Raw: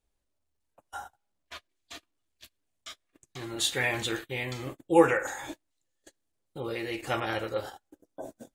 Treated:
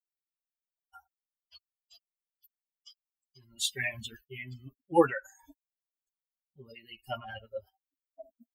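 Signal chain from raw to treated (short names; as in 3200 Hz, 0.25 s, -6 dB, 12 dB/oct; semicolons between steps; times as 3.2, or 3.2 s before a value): per-bin expansion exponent 3; mismatched tape noise reduction encoder only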